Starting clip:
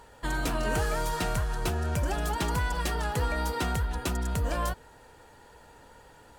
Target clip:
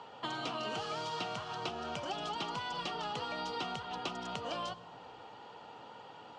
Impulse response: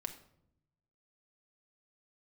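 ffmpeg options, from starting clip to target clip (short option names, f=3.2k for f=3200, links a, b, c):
-filter_complex "[0:a]highpass=f=130:w=0.5412,highpass=f=130:w=1.3066,equalizer=f=770:t=q:w=4:g=7,equalizer=f=1.2k:t=q:w=4:g=7,equalizer=f=1.7k:t=q:w=4:g=-8,equalizer=f=3k:t=q:w=4:g=9,lowpass=f=5.2k:w=0.5412,lowpass=f=5.2k:w=1.3066,asplit=2[a][b];[1:a]atrim=start_sample=2205,asetrate=22491,aresample=44100[c];[b][c]afir=irnorm=-1:irlink=0,volume=-12.5dB[d];[a][d]amix=inputs=2:normalize=0,acrossover=split=370|3300[e][f][g];[e]acompressor=threshold=-47dB:ratio=4[h];[f]acompressor=threshold=-38dB:ratio=4[i];[g]acompressor=threshold=-43dB:ratio=4[j];[h][i][j]amix=inputs=3:normalize=0,volume=-1.5dB"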